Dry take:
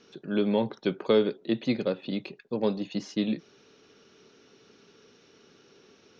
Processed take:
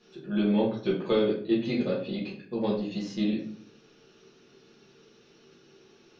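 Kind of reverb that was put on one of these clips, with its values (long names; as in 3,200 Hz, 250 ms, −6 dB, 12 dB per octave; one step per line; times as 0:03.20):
rectangular room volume 49 cubic metres, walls mixed, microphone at 1.4 metres
level −8 dB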